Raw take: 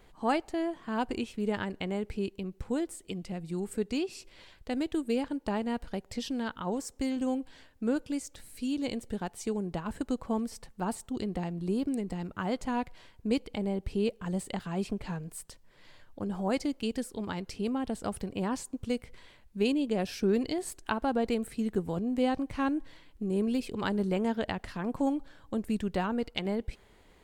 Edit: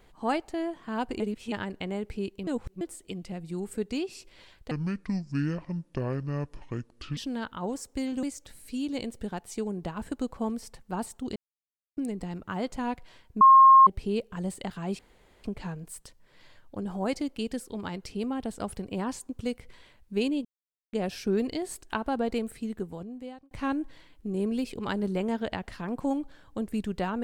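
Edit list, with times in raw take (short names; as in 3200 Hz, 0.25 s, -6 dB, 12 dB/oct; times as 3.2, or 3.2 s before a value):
1.2–1.52 reverse
2.47–2.81 reverse
4.71–6.21 speed 61%
7.27–8.12 cut
11.25–11.86 mute
13.3–13.76 bleep 1070 Hz -11 dBFS
14.88 insert room tone 0.45 s
19.89 insert silence 0.48 s
21.33–22.47 fade out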